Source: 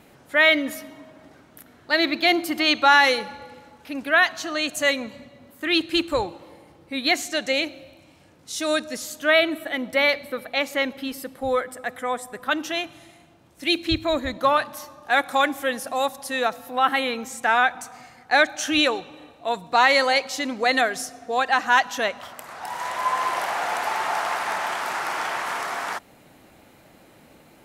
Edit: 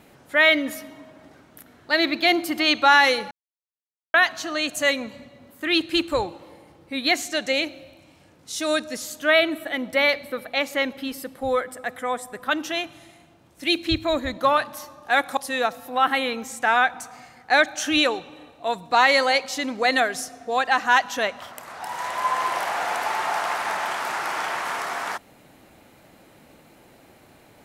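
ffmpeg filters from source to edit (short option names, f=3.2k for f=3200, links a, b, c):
-filter_complex "[0:a]asplit=4[a][b][c][d];[a]atrim=end=3.31,asetpts=PTS-STARTPTS,afade=t=out:st=3.306:d=0.004:c=hsin[e];[b]atrim=start=3.31:end=4.14,asetpts=PTS-STARTPTS,volume=0[f];[c]atrim=start=4.14:end=15.372,asetpts=PTS-STARTPTS,afade=t=in:d=0.004:c=hsin[g];[d]atrim=start=16.178[h];[e][f][g]concat=n=3:v=0:a=1[i];[i][h]acrossfade=d=0.004:c1=hsin:c2=hsin"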